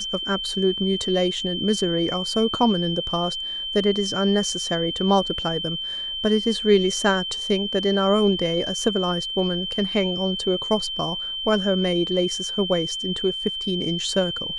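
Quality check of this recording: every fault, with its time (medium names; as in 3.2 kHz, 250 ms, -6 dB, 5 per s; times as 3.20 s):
whine 3.1 kHz -27 dBFS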